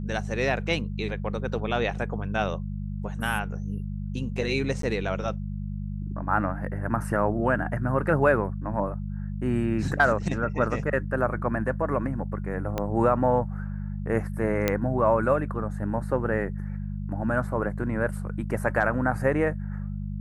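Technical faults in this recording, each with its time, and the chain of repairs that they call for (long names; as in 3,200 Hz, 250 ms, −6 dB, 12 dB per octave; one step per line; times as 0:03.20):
mains hum 50 Hz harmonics 4 −32 dBFS
0:04.82–0:04.83: drop-out 13 ms
0:12.78: click −14 dBFS
0:14.68: click −8 dBFS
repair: click removal
hum removal 50 Hz, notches 4
repair the gap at 0:04.82, 13 ms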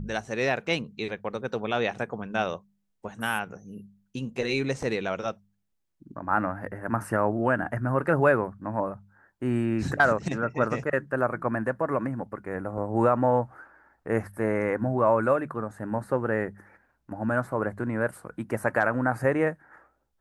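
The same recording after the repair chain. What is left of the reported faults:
0:12.78: click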